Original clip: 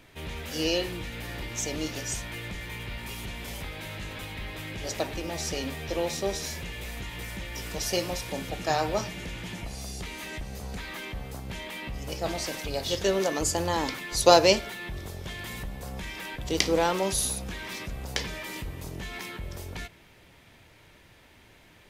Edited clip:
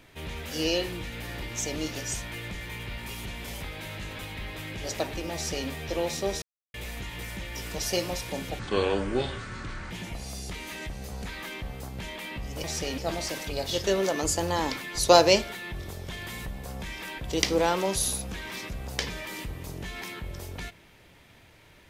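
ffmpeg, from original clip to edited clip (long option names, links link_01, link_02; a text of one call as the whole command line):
ffmpeg -i in.wav -filter_complex "[0:a]asplit=7[link_01][link_02][link_03][link_04][link_05][link_06][link_07];[link_01]atrim=end=6.42,asetpts=PTS-STARTPTS,afade=type=out:start_time=6.416:duration=0.004:curve=hsin[link_08];[link_02]atrim=start=6.42:end=6.74,asetpts=PTS-STARTPTS,volume=0[link_09];[link_03]atrim=start=6.74:end=8.594,asetpts=PTS-STARTPTS,afade=type=in:duration=0.004:curve=hsin[link_10];[link_04]atrim=start=8.59:end=9.42,asetpts=PTS-STARTPTS,asetrate=27783,aresample=44100[link_11];[link_05]atrim=start=9.416:end=12.152[link_12];[link_06]atrim=start=5.338:end=5.682[link_13];[link_07]atrim=start=12.148[link_14];[link_08][link_09][link_10]concat=n=3:v=0:a=1[link_15];[link_15][link_11]acrossfade=duration=0.004:curve1=hsin:curve2=hsin[link_16];[link_16][link_12]acrossfade=duration=0.004:curve1=hsin:curve2=hsin[link_17];[link_17][link_13]acrossfade=duration=0.004:curve1=hsin:curve2=hsin[link_18];[link_18][link_14]acrossfade=duration=0.004:curve1=hsin:curve2=hsin" out.wav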